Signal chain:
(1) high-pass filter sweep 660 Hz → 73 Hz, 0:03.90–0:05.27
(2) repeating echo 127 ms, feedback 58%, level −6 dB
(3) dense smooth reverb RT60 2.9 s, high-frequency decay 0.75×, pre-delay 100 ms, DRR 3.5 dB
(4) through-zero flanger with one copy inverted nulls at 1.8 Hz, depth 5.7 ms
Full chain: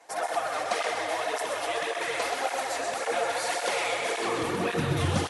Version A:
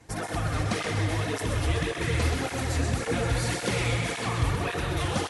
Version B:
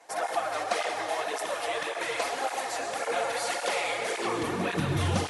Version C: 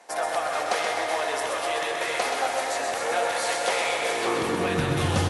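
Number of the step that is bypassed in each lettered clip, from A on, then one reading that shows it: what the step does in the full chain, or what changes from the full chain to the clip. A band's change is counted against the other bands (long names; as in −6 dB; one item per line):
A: 1, 125 Hz band +9.0 dB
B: 2, change in crest factor +2.0 dB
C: 4, change in integrated loudness +3.0 LU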